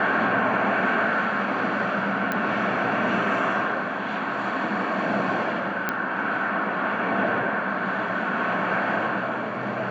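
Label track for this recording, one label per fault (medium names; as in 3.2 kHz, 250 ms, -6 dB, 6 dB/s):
2.320000	2.320000	pop -12 dBFS
5.890000	5.890000	pop -10 dBFS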